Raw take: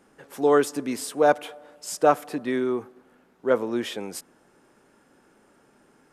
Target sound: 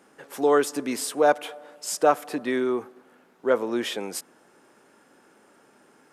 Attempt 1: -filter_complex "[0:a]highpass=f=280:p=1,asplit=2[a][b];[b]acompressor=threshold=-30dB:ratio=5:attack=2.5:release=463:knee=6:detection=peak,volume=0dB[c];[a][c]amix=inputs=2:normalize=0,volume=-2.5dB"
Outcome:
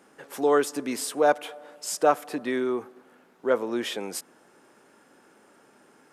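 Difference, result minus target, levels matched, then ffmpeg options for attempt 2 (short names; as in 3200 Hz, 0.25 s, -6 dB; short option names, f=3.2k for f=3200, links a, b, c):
compressor: peak gain reduction +6.5 dB
-filter_complex "[0:a]highpass=f=280:p=1,asplit=2[a][b];[b]acompressor=threshold=-22dB:ratio=5:attack=2.5:release=463:knee=6:detection=peak,volume=0dB[c];[a][c]amix=inputs=2:normalize=0,volume=-2.5dB"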